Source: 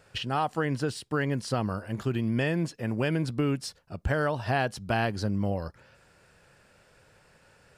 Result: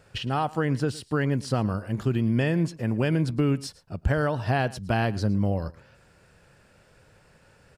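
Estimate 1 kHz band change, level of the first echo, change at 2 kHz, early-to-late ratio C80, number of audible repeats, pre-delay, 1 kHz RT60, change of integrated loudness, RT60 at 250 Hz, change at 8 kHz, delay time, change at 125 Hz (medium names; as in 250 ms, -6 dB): +1.0 dB, -20.5 dB, +0.5 dB, no reverb, 1, no reverb, no reverb, +3.0 dB, no reverb, 0.0 dB, 112 ms, +5.0 dB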